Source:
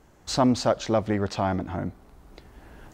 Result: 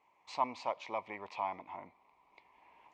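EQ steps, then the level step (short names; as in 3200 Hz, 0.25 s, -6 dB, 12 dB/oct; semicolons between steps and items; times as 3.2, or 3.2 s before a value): double band-pass 1500 Hz, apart 1.2 oct; 0.0 dB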